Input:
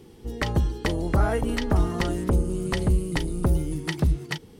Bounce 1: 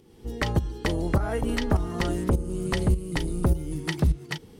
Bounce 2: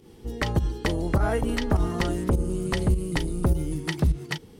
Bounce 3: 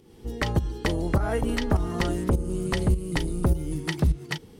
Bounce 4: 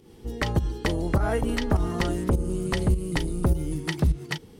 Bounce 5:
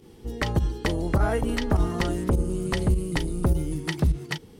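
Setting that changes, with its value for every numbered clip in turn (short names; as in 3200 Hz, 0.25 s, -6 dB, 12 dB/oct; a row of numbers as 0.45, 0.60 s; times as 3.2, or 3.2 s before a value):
pump, release: 476, 110, 292, 172, 67 ms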